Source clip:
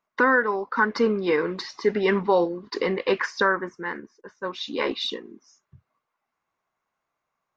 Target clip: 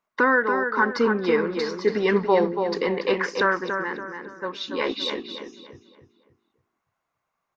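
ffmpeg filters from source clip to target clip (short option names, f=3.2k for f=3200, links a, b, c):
-filter_complex "[0:a]asplit=2[a][b];[b]adelay=284,lowpass=f=3.5k:p=1,volume=-6dB,asplit=2[c][d];[d]adelay=284,lowpass=f=3.5k:p=1,volume=0.39,asplit=2[e][f];[f]adelay=284,lowpass=f=3.5k:p=1,volume=0.39,asplit=2[g][h];[h]adelay=284,lowpass=f=3.5k:p=1,volume=0.39,asplit=2[i][j];[j]adelay=284,lowpass=f=3.5k:p=1,volume=0.39[k];[a][c][e][g][i][k]amix=inputs=6:normalize=0"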